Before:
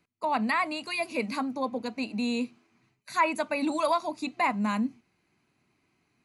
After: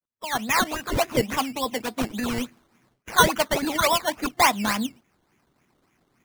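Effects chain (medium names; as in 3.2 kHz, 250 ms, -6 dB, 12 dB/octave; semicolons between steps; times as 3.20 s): fade-in on the opening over 0.75 s; decimation with a swept rate 14×, swing 60% 3.5 Hz; harmonic-percussive split percussive +9 dB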